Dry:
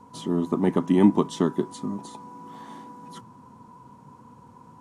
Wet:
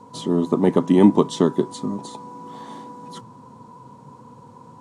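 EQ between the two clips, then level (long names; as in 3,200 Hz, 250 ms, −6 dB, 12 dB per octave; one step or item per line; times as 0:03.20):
graphic EQ with 10 bands 125 Hz +9 dB, 250 Hz +4 dB, 500 Hz +11 dB, 1,000 Hz +5 dB, 2,000 Hz +3 dB, 4,000 Hz +9 dB, 8,000 Hz +8 dB
−4.0 dB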